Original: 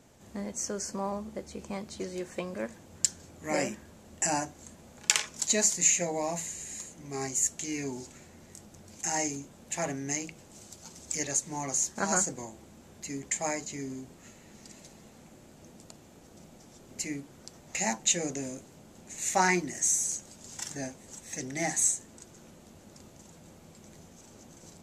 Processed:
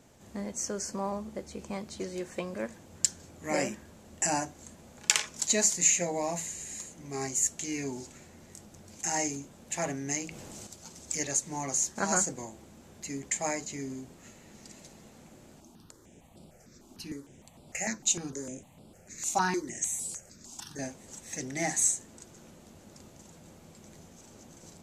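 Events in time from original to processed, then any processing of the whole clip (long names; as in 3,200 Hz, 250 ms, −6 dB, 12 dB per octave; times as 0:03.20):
0:10.26–0:10.67: envelope flattener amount 70%
0:15.60–0:20.79: step-sequenced phaser 6.6 Hz 490–6,300 Hz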